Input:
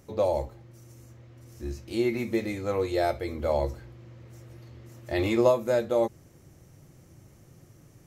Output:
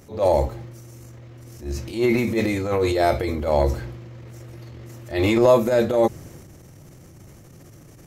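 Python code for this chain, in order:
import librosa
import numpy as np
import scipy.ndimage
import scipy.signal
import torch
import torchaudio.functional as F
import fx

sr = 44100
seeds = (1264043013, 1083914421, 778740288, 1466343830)

y = fx.transient(x, sr, attack_db=-11, sustain_db=6)
y = F.gain(torch.from_numpy(y), 8.0).numpy()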